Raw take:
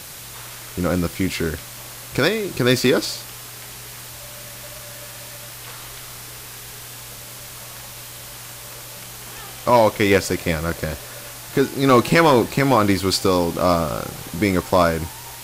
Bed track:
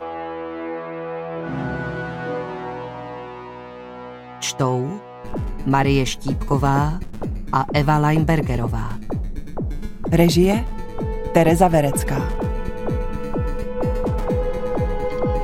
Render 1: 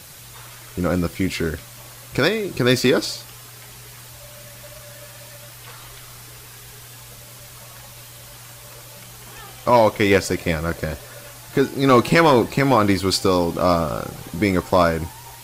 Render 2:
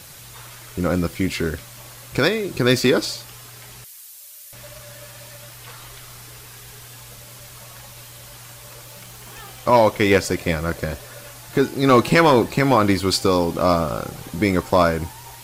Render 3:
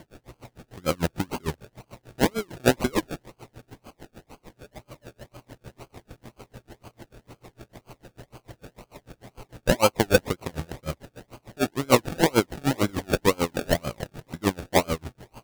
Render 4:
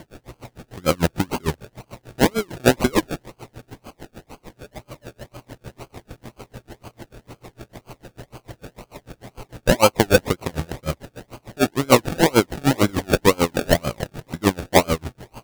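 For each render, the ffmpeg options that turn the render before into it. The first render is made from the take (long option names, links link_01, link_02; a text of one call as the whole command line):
ffmpeg -i in.wav -af "afftdn=noise_reduction=6:noise_floor=-37" out.wav
ffmpeg -i in.wav -filter_complex "[0:a]asettb=1/sr,asplit=3[link_01][link_02][link_03];[link_01]atrim=end=3.844[link_04];[link_02]atrim=start=3.84:end=4.53,asetpts=PTS-STARTPTS,afade=type=in:duration=0.004:curve=qsin,afade=type=out:start_time=0.686:duration=0.004:curve=qsin,aderivative[link_05];[link_03]atrim=start=4.526[link_06];[link_04][link_05]acrossfade=duration=0.004:curve1=hsin:curve2=qsin[link_07];[link_07][link_06]acrossfade=duration=0.004:curve1=qsin:curve2=hsin,asettb=1/sr,asplit=3[link_08][link_09][link_10];[link_08]atrim=end=8.854[link_11];[link_09]atrim=start=8.85:end=9.6,asetpts=PTS-STARTPTS,afade=type=in:duration=0.004:curve=qsin,afade=type=out:start_time=0.746:duration=0.004:curve=qsin,acrusher=bits=4:mode=log:mix=0:aa=0.000001[link_12];[link_10]atrim=start=9.596[link_13];[link_11][link_12]acrossfade=duration=0.004:curve1=hsin:curve2=qsin[link_14];[link_14][link_13]acrossfade=duration=0.004:curve1=qsin:curve2=hsin" out.wav
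ffmpeg -i in.wav -af "acrusher=samples=34:mix=1:aa=0.000001:lfo=1:lforange=20.4:lforate=2,aeval=exprs='val(0)*pow(10,-32*(0.5-0.5*cos(2*PI*6.7*n/s))/20)':channel_layout=same" out.wav
ffmpeg -i in.wav -af "volume=6dB,alimiter=limit=-3dB:level=0:latency=1" out.wav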